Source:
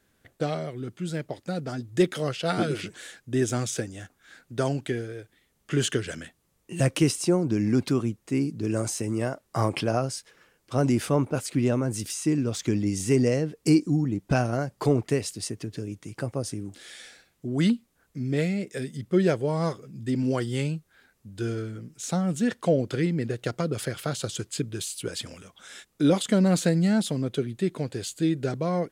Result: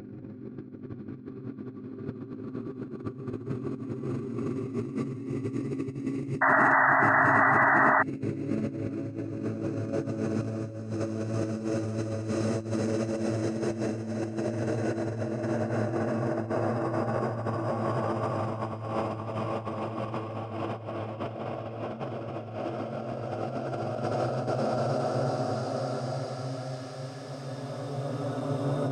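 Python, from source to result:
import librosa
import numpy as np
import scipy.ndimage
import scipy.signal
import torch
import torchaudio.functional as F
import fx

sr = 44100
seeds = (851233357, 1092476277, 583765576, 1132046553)

y = fx.env_lowpass_down(x, sr, base_hz=1500.0, full_db=-22.0)
y = fx.paulstretch(y, sr, seeds[0], factor=10.0, window_s=1.0, from_s=7.67)
y = fx.over_compress(y, sr, threshold_db=-31.0, ratio=-0.5)
y = fx.spec_paint(y, sr, seeds[1], shape='noise', start_s=6.41, length_s=1.62, low_hz=600.0, high_hz=2000.0, level_db=-22.0)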